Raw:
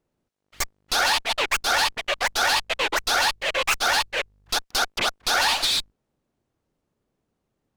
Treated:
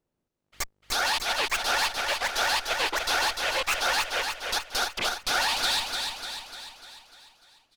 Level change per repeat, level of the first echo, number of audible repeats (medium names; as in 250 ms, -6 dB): -5.5 dB, -5.0 dB, 6